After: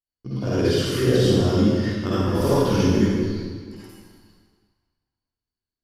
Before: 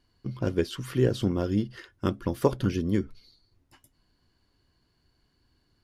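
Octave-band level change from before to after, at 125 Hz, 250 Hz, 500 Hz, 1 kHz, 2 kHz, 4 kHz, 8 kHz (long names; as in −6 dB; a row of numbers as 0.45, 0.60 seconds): +7.5, +8.0, +8.0, +8.0, +9.0, +12.0, +12.0 decibels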